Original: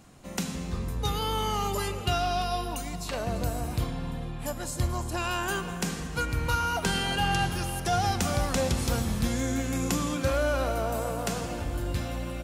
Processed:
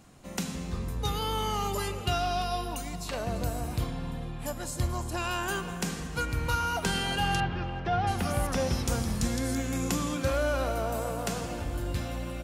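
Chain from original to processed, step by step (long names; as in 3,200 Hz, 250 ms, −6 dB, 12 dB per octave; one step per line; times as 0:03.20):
0:07.40–0:09.55: multiband delay without the direct sound lows, highs 670 ms, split 3,400 Hz
level −1.5 dB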